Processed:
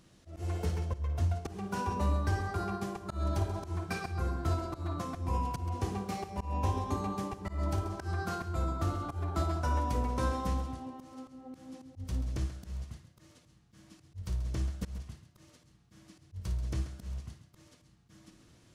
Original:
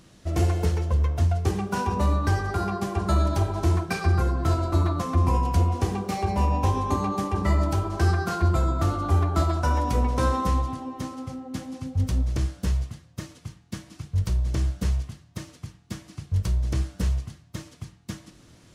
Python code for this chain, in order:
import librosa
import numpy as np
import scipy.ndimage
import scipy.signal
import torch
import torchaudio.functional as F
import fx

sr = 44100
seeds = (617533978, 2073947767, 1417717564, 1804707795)

y = fx.room_flutter(x, sr, wall_m=9.6, rt60_s=0.27)
y = fx.auto_swell(y, sr, attack_ms=192.0)
y = y + 10.0 ** (-12.0 / 20.0) * np.pad(y, (int(134 * sr / 1000.0), 0))[:len(y)]
y = y * librosa.db_to_amplitude(-8.5)